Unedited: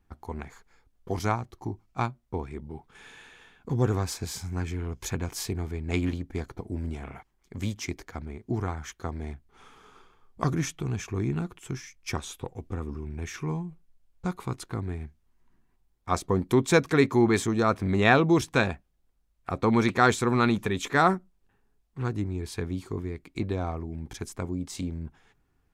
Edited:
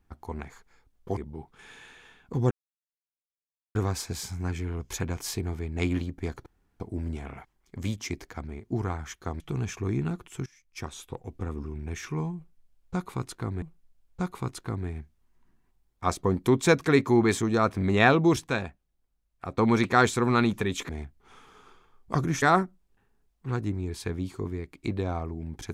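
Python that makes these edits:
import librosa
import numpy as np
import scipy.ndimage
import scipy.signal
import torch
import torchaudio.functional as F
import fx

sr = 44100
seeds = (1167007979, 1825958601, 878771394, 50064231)

y = fx.edit(x, sr, fx.cut(start_s=1.17, length_s=1.36),
    fx.insert_silence(at_s=3.87, length_s=1.24),
    fx.insert_room_tone(at_s=6.58, length_s=0.34),
    fx.move(start_s=9.18, length_s=1.53, to_s=20.94),
    fx.fade_in_from(start_s=11.77, length_s=1.18, curve='qsin', floor_db=-20.5),
    fx.repeat(start_s=13.67, length_s=1.26, count=2),
    fx.clip_gain(start_s=18.52, length_s=1.11, db=-5.0), tone=tone)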